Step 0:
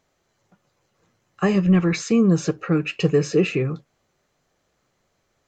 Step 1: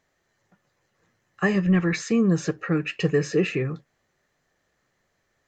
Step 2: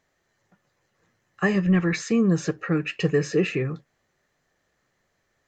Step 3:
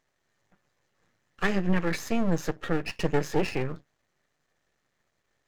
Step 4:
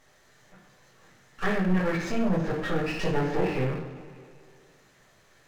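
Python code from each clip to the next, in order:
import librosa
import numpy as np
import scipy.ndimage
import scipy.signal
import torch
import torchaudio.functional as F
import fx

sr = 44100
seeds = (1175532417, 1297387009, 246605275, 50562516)

y1 = fx.peak_eq(x, sr, hz=1800.0, db=10.0, octaves=0.29)
y1 = F.gain(torch.from_numpy(y1), -3.5).numpy()
y2 = y1
y3 = np.maximum(y2, 0.0)
y4 = fx.env_lowpass_down(y3, sr, base_hz=2100.0, full_db=-22.5)
y4 = fx.rev_double_slope(y4, sr, seeds[0], early_s=0.55, late_s=1.8, knee_db=-18, drr_db=-5.0)
y4 = fx.power_curve(y4, sr, exponent=0.7)
y4 = F.gain(torch.from_numpy(y4), -8.0).numpy()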